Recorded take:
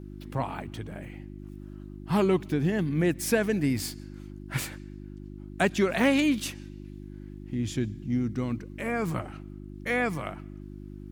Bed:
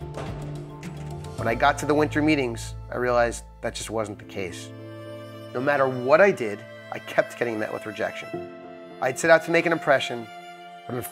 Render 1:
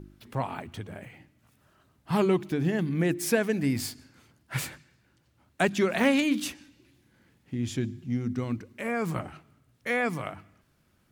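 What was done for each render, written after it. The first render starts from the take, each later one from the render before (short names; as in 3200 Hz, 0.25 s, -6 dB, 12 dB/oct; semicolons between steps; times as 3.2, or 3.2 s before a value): de-hum 50 Hz, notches 7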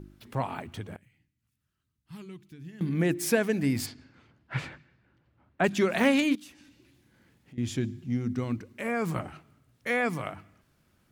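0.96–2.81 passive tone stack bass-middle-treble 6-0-2; 3.85–5.63 LPF 3800 Hz -> 2000 Hz; 6.35–7.58 compressor 3:1, threshold -51 dBFS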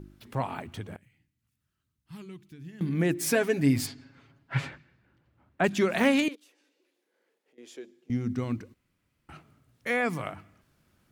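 3.2–4.71 comb 7.3 ms; 6.28–8.1 ladder high-pass 410 Hz, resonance 65%; 8.74–9.29 room tone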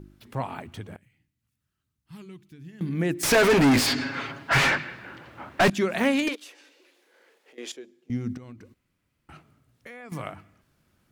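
3.23–5.7 overdrive pedal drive 37 dB, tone 3100 Hz, clips at -11.5 dBFS; 6.27–7.72 overdrive pedal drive 23 dB, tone 6300 Hz, clips at -18 dBFS; 8.37–10.12 compressor 8:1, threshold -40 dBFS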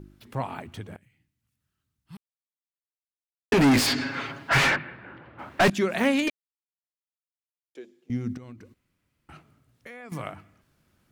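2.17–3.52 mute; 4.76–5.39 air absorption 420 m; 6.3–7.75 mute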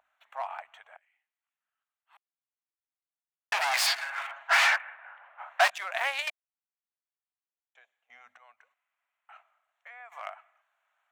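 Wiener smoothing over 9 samples; elliptic high-pass 690 Hz, stop band 50 dB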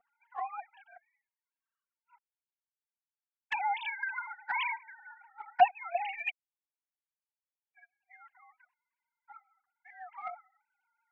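sine-wave speech; envelope flanger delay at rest 4.4 ms, full sweep at -27 dBFS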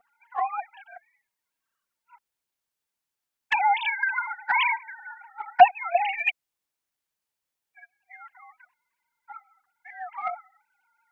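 gain +10 dB; limiter -3 dBFS, peak gain reduction 2 dB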